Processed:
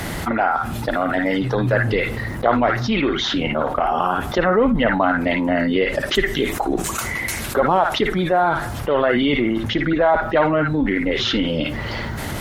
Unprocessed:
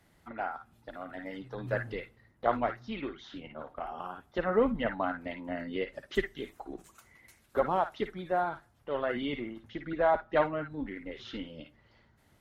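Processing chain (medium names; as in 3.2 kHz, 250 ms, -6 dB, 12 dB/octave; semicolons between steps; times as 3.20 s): level flattener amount 70%; trim +7.5 dB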